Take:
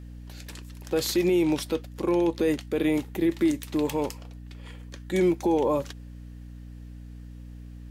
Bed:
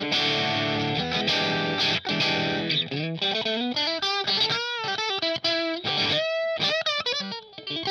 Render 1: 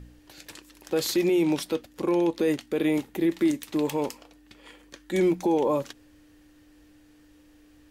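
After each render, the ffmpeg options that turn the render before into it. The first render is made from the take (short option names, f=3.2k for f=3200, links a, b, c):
-af "bandreject=f=60:t=h:w=4,bandreject=f=120:t=h:w=4,bandreject=f=180:t=h:w=4,bandreject=f=240:t=h:w=4"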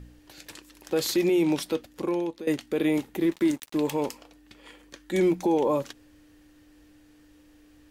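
-filter_complex "[0:a]asettb=1/sr,asplit=3[a][b][c];[a]atrim=end=3.214[d];[b]atrim=start=3.21:end=3.78,asetpts=PTS-STARTPTS,afade=t=in:d=0.004:c=qsin,afade=t=out:st=0.566:d=0.004:c=qsin,aeval=exprs='sgn(val(0))*max(abs(val(0))-0.00562,0)':c=same[e];[c]atrim=start=3.776[f];[d][e]acrossfade=d=0.004:c1=hsin:c2=qsin[g];[g][f]acrossfade=d=0.004:c1=qsin:c2=hsin,asplit=2[h][i];[h]atrim=end=2.47,asetpts=PTS-STARTPTS,afade=t=out:st=1.92:d=0.55:silence=0.158489[j];[i]atrim=start=2.47,asetpts=PTS-STARTPTS,afade=t=in:d=0.004:c=hsin:silence=0.158489[k];[j][k]concat=n=2:v=0:a=1"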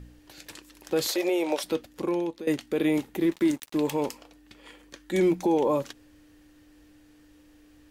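-filter_complex "[0:a]asettb=1/sr,asplit=3[a][b][c];[a]atrim=end=1.074[d];[b]atrim=start=1.07:end=1.64,asetpts=PTS-STARTPTS,afade=t=in:d=0.004:c=qsin,afade=t=out:st=0.566:d=0.004:c=qsin,highpass=f=570:t=q:w=3[e];[c]atrim=start=1.636[f];[d][e]acrossfade=d=0.004:c1=hsin:c2=qsin[g];[g][f]acrossfade=d=0.004:c1=qsin:c2=hsin"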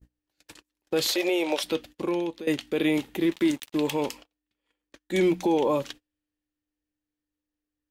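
-af "agate=range=-32dB:threshold=-43dB:ratio=16:detection=peak,adynamicequalizer=threshold=0.00316:dfrequency=3100:dqfactor=1.2:tfrequency=3100:tqfactor=1.2:attack=5:release=100:ratio=0.375:range=3.5:mode=boostabove:tftype=bell"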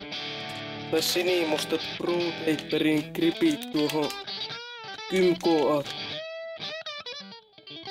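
-filter_complex "[1:a]volume=-11dB[a];[0:a][a]amix=inputs=2:normalize=0"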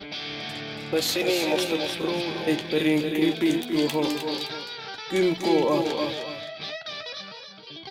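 -filter_complex "[0:a]asplit=2[a][b];[b]adelay=13,volume=-10.5dB[c];[a][c]amix=inputs=2:normalize=0,aecho=1:1:278|308|569:0.355|0.422|0.188"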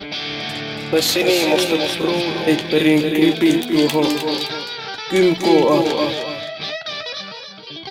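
-af "volume=8dB"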